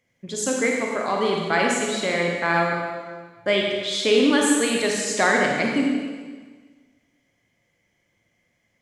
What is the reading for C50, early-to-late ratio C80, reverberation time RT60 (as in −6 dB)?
0.5 dB, 2.5 dB, 1.5 s